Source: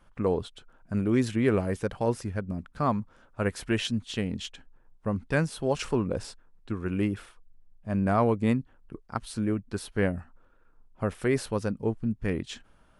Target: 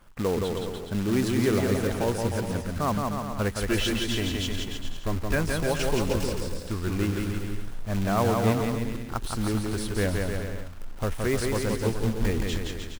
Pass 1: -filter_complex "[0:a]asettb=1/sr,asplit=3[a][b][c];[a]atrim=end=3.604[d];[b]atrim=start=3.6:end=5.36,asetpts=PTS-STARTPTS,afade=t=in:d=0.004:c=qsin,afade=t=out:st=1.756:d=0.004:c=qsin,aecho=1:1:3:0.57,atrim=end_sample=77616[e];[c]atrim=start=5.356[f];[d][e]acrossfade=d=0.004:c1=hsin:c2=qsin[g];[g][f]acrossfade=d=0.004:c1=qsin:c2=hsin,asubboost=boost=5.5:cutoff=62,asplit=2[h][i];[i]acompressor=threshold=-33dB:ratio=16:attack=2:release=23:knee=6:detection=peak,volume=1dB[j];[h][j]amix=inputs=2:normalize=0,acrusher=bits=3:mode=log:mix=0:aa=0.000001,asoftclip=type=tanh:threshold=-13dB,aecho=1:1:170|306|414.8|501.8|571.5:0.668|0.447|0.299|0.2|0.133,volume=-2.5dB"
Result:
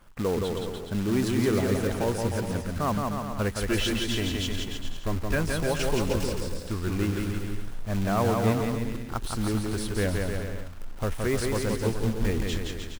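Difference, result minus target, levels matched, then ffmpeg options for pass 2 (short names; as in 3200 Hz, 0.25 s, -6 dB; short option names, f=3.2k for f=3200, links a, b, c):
soft clip: distortion +11 dB
-filter_complex "[0:a]asettb=1/sr,asplit=3[a][b][c];[a]atrim=end=3.604[d];[b]atrim=start=3.6:end=5.36,asetpts=PTS-STARTPTS,afade=t=in:d=0.004:c=qsin,afade=t=out:st=1.756:d=0.004:c=qsin,aecho=1:1:3:0.57,atrim=end_sample=77616[e];[c]atrim=start=5.356[f];[d][e]acrossfade=d=0.004:c1=hsin:c2=qsin[g];[g][f]acrossfade=d=0.004:c1=qsin:c2=hsin,asubboost=boost=5.5:cutoff=62,asplit=2[h][i];[i]acompressor=threshold=-33dB:ratio=16:attack=2:release=23:knee=6:detection=peak,volume=1dB[j];[h][j]amix=inputs=2:normalize=0,acrusher=bits=3:mode=log:mix=0:aa=0.000001,asoftclip=type=tanh:threshold=-6.5dB,aecho=1:1:170|306|414.8|501.8|571.5:0.668|0.447|0.299|0.2|0.133,volume=-2.5dB"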